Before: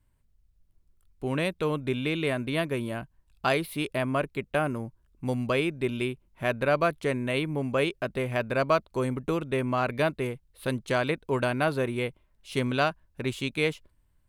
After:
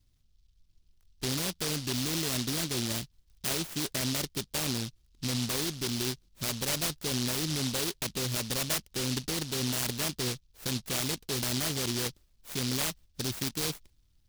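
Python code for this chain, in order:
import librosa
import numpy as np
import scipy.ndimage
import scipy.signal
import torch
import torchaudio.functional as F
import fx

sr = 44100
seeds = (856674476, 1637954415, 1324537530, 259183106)

p1 = fx.over_compress(x, sr, threshold_db=-30.0, ratio=-0.5)
p2 = x + (p1 * librosa.db_to_amplitude(1.0))
p3 = fx.noise_mod_delay(p2, sr, seeds[0], noise_hz=4200.0, depth_ms=0.4)
y = p3 * librosa.db_to_amplitude(-8.5)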